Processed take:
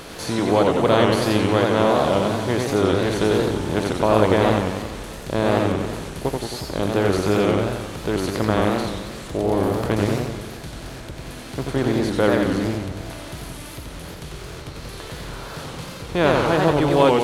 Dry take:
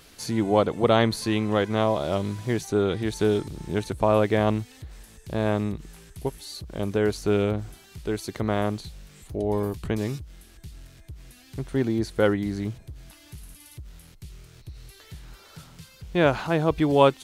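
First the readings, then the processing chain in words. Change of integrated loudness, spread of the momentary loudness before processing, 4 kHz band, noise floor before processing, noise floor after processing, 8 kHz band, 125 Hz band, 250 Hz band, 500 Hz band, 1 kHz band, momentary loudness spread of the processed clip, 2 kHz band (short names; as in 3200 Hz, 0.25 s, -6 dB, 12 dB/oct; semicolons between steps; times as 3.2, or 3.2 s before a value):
+4.5 dB, 22 LU, +6.5 dB, -52 dBFS, -36 dBFS, +6.5 dB, +4.5 dB, +5.0 dB, +5.0 dB, +6.0 dB, 17 LU, +6.5 dB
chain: per-bin compression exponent 0.6; warbling echo 90 ms, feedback 62%, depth 199 cents, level -3 dB; gain -1 dB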